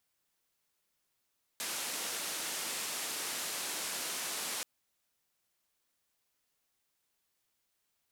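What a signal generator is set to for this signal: noise band 230–11000 Hz, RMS -38 dBFS 3.03 s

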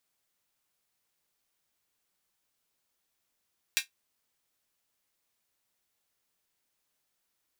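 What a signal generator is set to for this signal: closed hi-hat, high-pass 2.2 kHz, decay 0.13 s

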